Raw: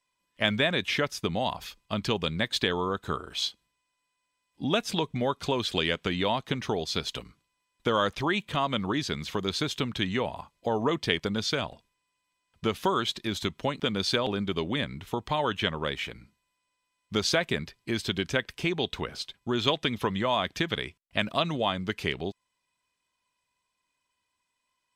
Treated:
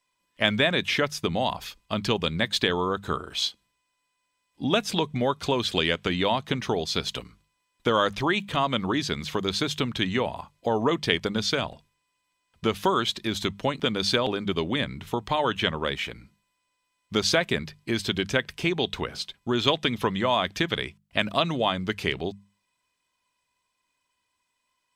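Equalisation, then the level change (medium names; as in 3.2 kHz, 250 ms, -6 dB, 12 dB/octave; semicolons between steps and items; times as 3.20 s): hum notches 50/100/150/200 Hz; +3.0 dB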